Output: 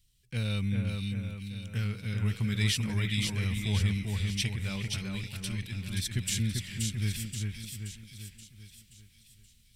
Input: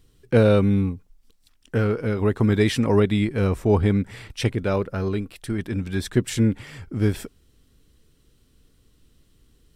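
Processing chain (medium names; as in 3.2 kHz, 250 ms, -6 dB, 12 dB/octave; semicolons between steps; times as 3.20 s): high-order bell 660 Hz -11.5 dB 2.9 oct; level rider gain up to 5 dB; amplifier tone stack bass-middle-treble 5-5-5; on a send: two-band feedback delay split 2.4 kHz, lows 392 ms, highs 527 ms, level -3.5 dB; on the sum: trim +2 dB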